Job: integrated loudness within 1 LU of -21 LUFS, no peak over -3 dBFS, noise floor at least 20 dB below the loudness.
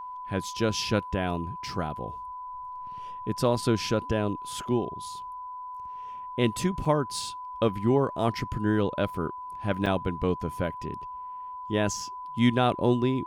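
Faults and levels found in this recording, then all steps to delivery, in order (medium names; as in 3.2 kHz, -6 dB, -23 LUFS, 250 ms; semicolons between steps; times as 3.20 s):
dropouts 2; longest dropout 4.7 ms; steady tone 1 kHz; tone level -36 dBFS; loudness -29.0 LUFS; peak level -9.0 dBFS; loudness target -21.0 LUFS
-> interpolate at 6.85/9.86 s, 4.7 ms; band-stop 1 kHz, Q 30; trim +8 dB; peak limiter -3 dBFS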